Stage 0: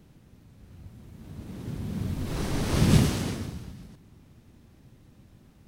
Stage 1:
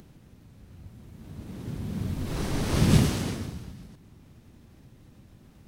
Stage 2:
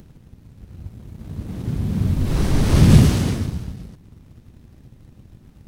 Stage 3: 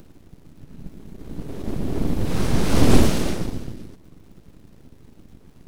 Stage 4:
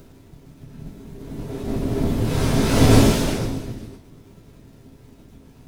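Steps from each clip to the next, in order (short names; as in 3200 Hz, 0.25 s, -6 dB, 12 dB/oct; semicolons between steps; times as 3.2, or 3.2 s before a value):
upward compressor, threshold -47 dBFS
low shelf 180 Hz +9 dB; sample leveller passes 1; gain +1.5 dB
full-wave rectifier; crackle 130/s -49 dBFS
reverb, pre-delay 3 ms, DRR -4 dB; gain -2 dB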